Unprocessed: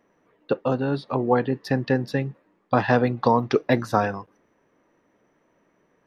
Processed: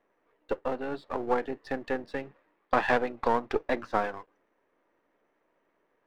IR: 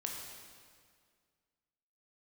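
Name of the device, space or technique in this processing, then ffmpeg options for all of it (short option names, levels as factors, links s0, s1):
crystal radio: -filter_complex "[0:a]highpass=340,lowpass=3100,aeval=exprs='if(lt(val(0),0),0.447*val(0),val(0))':c=same,asettb=1/sr,asplit=3[s0][s1][s2];[s0]atrim=end=2.234[s3];[s1]atrim=start=2.23:end=2.98,asetpts=PTS-STARTPTS,afade=t=in:d=0.004:c=qsin,afade=t=out:st=0.746:d=0.004:c=qsin,equalizer=f=2500:w=0.38:g=5.5[s4];[s2]atrim=start=2.976[s5];[s3][s4]acrossfade=d=0.004:c1=hsin:c2=qsin[s6];[s6][s5]acrossfade=d=0.004:c1=qsin:c2=hsin,volume=0.668"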